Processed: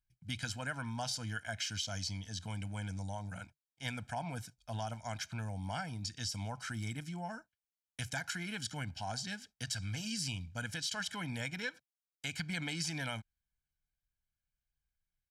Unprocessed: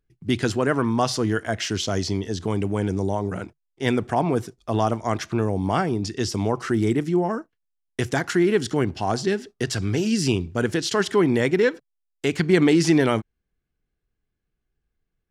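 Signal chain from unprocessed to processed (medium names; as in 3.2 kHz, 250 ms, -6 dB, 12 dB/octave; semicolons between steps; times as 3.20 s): amplifier tone stack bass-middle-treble 5-5-5; comb 1.3 ms, depth 94%; compression, threshold -31 dBFS, peak gain reduction 4 dB; trim -2.5 dB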